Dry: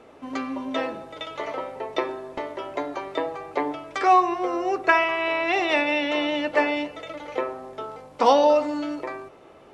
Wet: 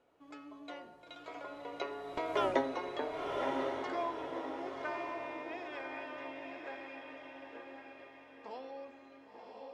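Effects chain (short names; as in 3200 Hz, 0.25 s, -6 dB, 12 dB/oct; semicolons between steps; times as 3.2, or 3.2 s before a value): Doppler pass-by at 2.45, 29 m/s, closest 1.9 m; in parallel at +1 dB: compressor, threshold -51 dBFS, peak gain reduction 20 dB; on the sum: diffused feedback echo 1.041 s, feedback 41%, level -3 dB; gain +3.5 dB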